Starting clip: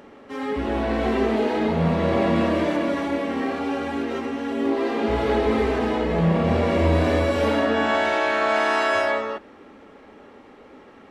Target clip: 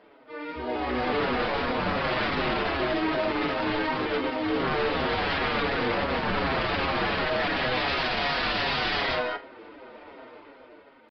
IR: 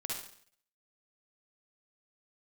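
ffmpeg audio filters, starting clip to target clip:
-filter_complex "[0:a]acrossover=split=3400[s0][s1];[s1]acompressor=threshold=0.00398:ratio=4:attack=1:release=60[s2];[s0][s2]amix=inputs=2:normalize=0,bass=f=250:g=-7,treble=f=4000:g=-7,dynaudnorm=f=150:g=13:m=5.62,aeval=exprs='0.188*(abs(mod(val(0)/0.188+3,4)-2)-1)':c=same,asetrate=49501,aresample=44100,atempo=0.890899,acrusher=bits=4:mode=log:mix=0:aa=0.000001,asplit=2[s3][s4];[1:a]atrim=start_sample=2205,asetrate=74970,aresample=44100[s5];[s4][s5]afir=irnorm=-1:irlink=0,volume=0.531[s6];[s3][s6]amix=inputs=2:normalize=0,aresample=11025,aresample=44100,asplit=2[s7][s8];[s8]adelay=6.3,afreqshift=-2.7[s9];[s7][s9]amix=inputs=2:normalize=1,volume=0.501"

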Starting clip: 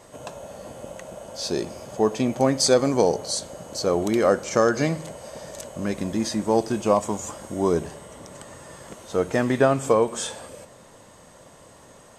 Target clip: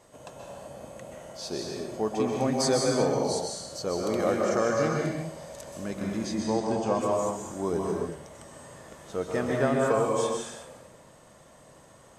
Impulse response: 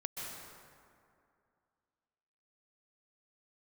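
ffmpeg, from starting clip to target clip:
-filter_complex "[0:a]asettb=1/sr,asplit=3[s0][s1][s2];[s0]atrim=end=6.254[s3];[s1]atrim=start=6.25:end=6.99,asetpts=PTS-STARTPTS,afade=t=in:d=0.004:c=qsin,afade=t=out:st=0.736:d=0.004:c=qsin,lowpass=f=8500:w=0.5412,lowpass=f=8500:w=1.3066[s4];[s2]atrim=start=6.986[s5];[s3][s4]acrossfade=d=0.004:c1=hsin:c2=qsin[s6];[s6][s5]acrossfade=d=0.004:c1=qsin:c2=hsin[s7];[1:a]atrim=start_sample=2205,afade=t=out:st=0.44:d=0.01,atrim=end_sample=19845[s8];[s7][s8]afir=irnorm=-1:irlink=0,volume=0.562"

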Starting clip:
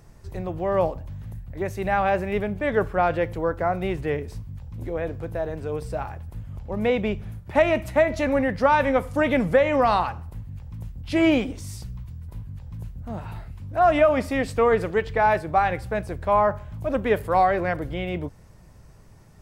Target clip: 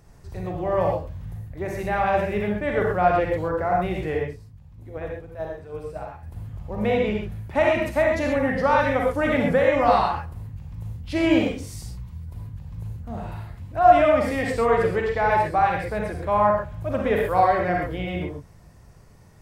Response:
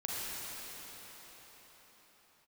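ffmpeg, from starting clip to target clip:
-filter_complex "[0:a]asettb=1/sr,asplit=3[s0][s1][s2];[s0]atrim=end=4.224[s3];[s1]atrim=start=4.22:end=6.23,asetpts=PTS-STARTPTS,afade=t=in:d=0.004:c=qsin,afade=t=out:st=2.006:d=0.004:c=qsin,agate=range=0.316:threshold=0.0501:ratio=16:detection=peak[s4];[s2]atrim=start=6.226[s5];[s3][s4]acrossfade=d=0.004:c1=hsin:c2=qsin[s6];[s6][s5]acrossfade=d=0.004:c1=qsin:c2=hsin[s7];[1:a]atrim=start_sample=2205,atrim=end_sample=6174[s8];[s7][s8]afir=irnorm=-1:irlink=0"

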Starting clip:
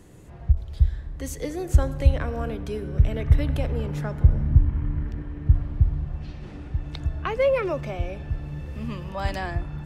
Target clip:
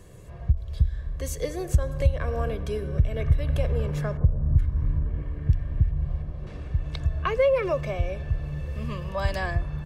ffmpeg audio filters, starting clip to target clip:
-filter_complex "[0:a]aecho=1:1:1.8:0.56,acompressor=threshold=0.112:ratio=2.5,asettb=1/sr,asplit=3[s0][s1][s2];[s0]atrim=end=4.174[s3];[s1]atrim=start=4.17:end=6.47,asetpts=PTS-STARTPTS,afade=t=in:d=0.004:c=qsin,afade=t=out:st=2.296:d=0.004:c=qsin,acrossover=split=1400[s4][s5];[s5]adelay=410[s6];[s4][s6]amix=inputs=2:normalize=0,atrim=end_sample=101430[s7];[s2]atrim=start=6.466[s8];[s3][s7]acrossfade=d=0.004:c1=hsin:c2=qsin[s9];[s9][s8]acrossfade=d=0.004:c1=qsin:c2=hsin"

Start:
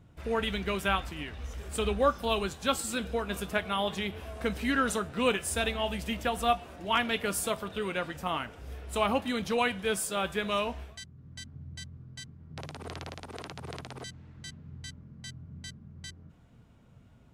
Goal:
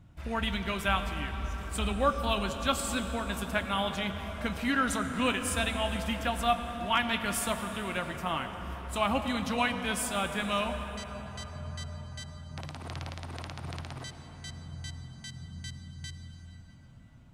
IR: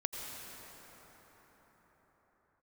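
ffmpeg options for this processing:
-filter_complex "[0:a]equalizer=f=440:t=o:w=0.4:g=-11,asplit=2[s0][s1];[1:a]atrim=start_sample=2205,lowshelf=f=98:g=8.5,highshelf=f=12000:g=-6[s2];[s1][s2]afir=irnorm=-1:irlink=0,volume=0.708[s3];[s0][s3]amix=inputs=2:normalize=0,volume=0.631"

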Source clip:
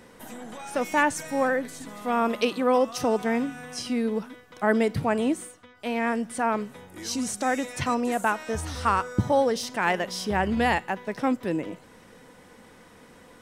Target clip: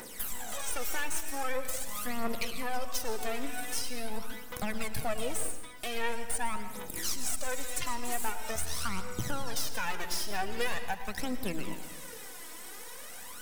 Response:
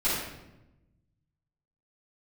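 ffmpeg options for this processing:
-filter_complex "[0:a]aemphasis=mode=production:type=riaa,acrossover=split=520|2600[s0][s1][s2];[s0]alimiter=level_in=1.58:limit=0.0631:level=0:latency=1,volume=0.631[s3];[s3][s1][s2]amix=inputs=3:normalize=0,acrossover=split=150[s4][s5];[s5]acompressor=threshold=0.0112:ratio=4[s6];[s4][s6]amix=inputs=2:normalize=0,aeval=exprs='0.0841*(cos(1*acos(clip(val(0)/0.0841,-1,1)))-cos(1*PI/2))+0.0119*(cos(8*acos(clip(val(0)/0.0841,-1,1)))-cos(8*PI/2))':c=same,aphaser=in_gain=1:out_gain=1:delay=3.2:decay=0.65:speed=0.44:type=triangular,asplit=2[s7][s8];[1:a]atrim=start_sample=2205,adelay=105[s9];[s8][s9]afir=irnorm=-1:irlink=0,volume=0.0944[s10];[s7][s10]amix=inputs=2:normalize=0"

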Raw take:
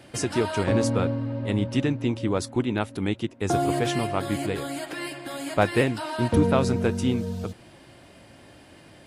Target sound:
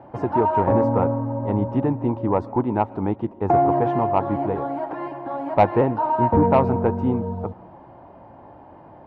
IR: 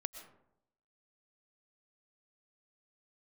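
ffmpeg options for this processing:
-filter_complex "[0:a]lowpass=f=900:t=q:w=4.6,asoftclip=type=tanh:threshold=0.422,asplit=2[s0][s1];[1:a]atrim=start_sample=2205[s2];[s1][s2]afir=irnorm=-1:irlink=0,volume=0.335[s3];[s0][s3]amix=inputs=2:normalize=0"

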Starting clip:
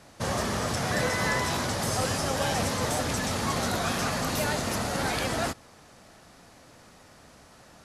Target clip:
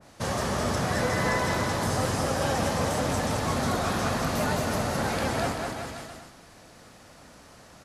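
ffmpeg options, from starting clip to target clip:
-filter_complex "[0:a]asplit=2[s0][s1];[s1]aecho=0:1:210|388.5|540.2|669.2|778.8:0.631|0.398|0.251|0.158|0.1[s2];[s0][s2]amix=inputs=2:normalize=0,adynamicequalizer=threshold=0.0126:dfrequency=1700:dqfactor=0.7:tfrequency=1700:tqfactor=0.7:attack=5:release=100:ratio=0.375:range=2.5:mode=cutabove:tftype=highshelf"

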